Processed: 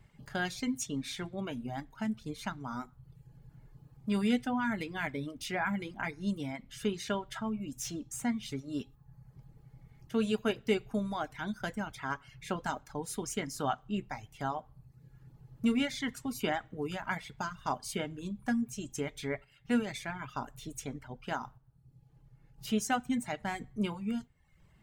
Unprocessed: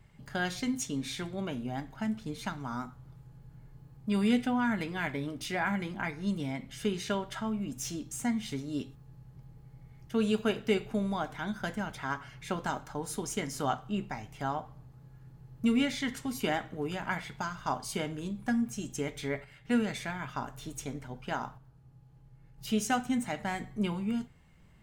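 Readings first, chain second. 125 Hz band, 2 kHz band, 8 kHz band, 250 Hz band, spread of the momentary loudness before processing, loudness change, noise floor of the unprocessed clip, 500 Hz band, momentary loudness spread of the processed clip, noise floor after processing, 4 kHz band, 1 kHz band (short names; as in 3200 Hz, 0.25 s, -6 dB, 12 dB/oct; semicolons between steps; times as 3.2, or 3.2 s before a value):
-3.0 dB, -1.5 dB, -1.5 dB, -2.0 dB, 15 LU, -2.0 dB, -57 dBFS, -1.5 dB, 9 LU, -63 dBFS, -1.5 dB, -1.5 dB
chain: reverb removal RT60 0.78 s; gain -1 dB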